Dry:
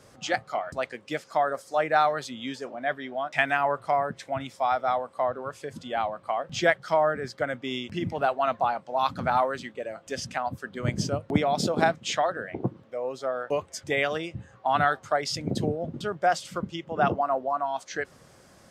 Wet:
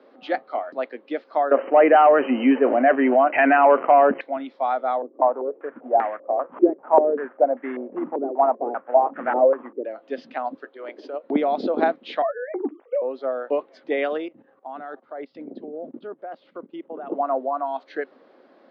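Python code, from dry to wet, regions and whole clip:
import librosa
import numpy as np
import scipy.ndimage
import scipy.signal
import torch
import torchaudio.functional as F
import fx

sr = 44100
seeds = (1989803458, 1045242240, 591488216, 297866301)

y = fx.chain(x, sr, fx.leveller(passes=2),
    fx.brickwall_lowpass(high_hz=3100.0),
    fx.env_flatten(amount_pct=50), at=(1.51, 4.21))
y = fx.chain(y, sr, fx.cvsd(bps=16000),
    fx.low_shelf(hz=140.0, db=-5.5),
    fx.filter_held_lowpass(hz=5.1, low_hz=350.0, high_hz=1800.0), at=(5.02, 9.85))
y = fx.chain(y, sr, fx.highpass(hz=390.0, slope=24),
    fx.transient(attack_db=-11, sustain_db=-3), at=(10.64, 11.24))
y = fx.chain(y, sr, fx.sine_speech(),
    fx.doubler(ms=14.0, db=-12),
    fx.band_squash(depth_pct=70), at=(12.22, 13.02))
y = fx.chain(y, sr, fx.lowpass(hz=1900.0, slope=6),
    fx.peak_eq(hz=110.0, db=8.5, octaves=0.87),
    fx.level_steps(step_db=18), at=(14.28, 17.12))
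y = scipy.signal.sosfilt(scipy.signal.cheby1(4, 1.0, [260.0, 4200.0], 'bandpass', fs=sr, output='sos'), y)
y = fx.tilt_shelf(y, sr, db=7.0, hz=1200.0)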